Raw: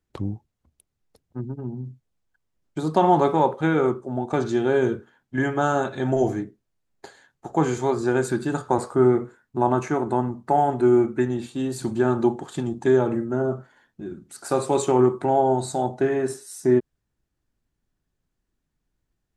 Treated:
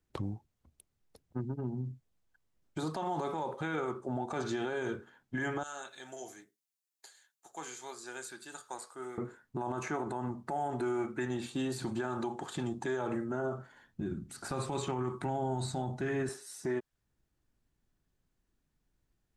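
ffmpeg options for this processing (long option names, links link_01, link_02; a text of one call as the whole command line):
ffmpeg -i in.wav -filter_complex "[0:a]asettb=1/sr,asplit=3[link_01][link_02][link_03];[link_01]atrim=end=5.634[link_04];[link_02]atrim=start=5.63:end=9.18,asetpts=PTS-STARTPTS,afade=type=in:duration=0.004:curve=qsin,afade=type=out:start_time=3.546:duration=0.004:curve=qsin,aderivative[link_05];[link_03]atrim=start=9.176[link_06];[link_04][link_05]acrossfade=duration=0.004:curve1=hsin:curve2=qsin[link_07];[link_07][link_06]acrossfade=duration=0.004:curve1=qsin:curve2=hsin,asettb=1/sr,asplit=3[link_08][link_09][link_10];[link_08]atrim=end=13.534[link_11];[link_09]atrim=start=13.53:end=16.29,asetpts=PTS-STARTPTS,afade=type=in:duration=0.004:curve=qsin,afade=type=out:start_time=2.756:duration=0.004:curve=qsin,asubboost=boost=11:cutoff=230[link_12];[link_10]atrim=start=16.286[link_13];[link_11][link_12]acrossfade=duration=0.004:curve1=hsin:curve2=qsin[link_14];[link_14][link_13]acrossfade=duration=0.004:curve1=qsin:curve2=hsin,acrossover=split=680|4500[link_15][link_16][link_17];[link_15]acompressor=threshold=-32dB:ratio=4[link_18];[link_16]acompressor=threshold=-30dB:ratio=4[link_19];[link_17]acompressor=threshold=-48dB:ratio=4[link_20];[link_18][link_19][link_20]amix=inputs=3:normalize=0,alimiter=level_in=1dB:limit=-24dB:level=0:latency=1:release=39,volume=-1dB,volume=-1dB" out.wav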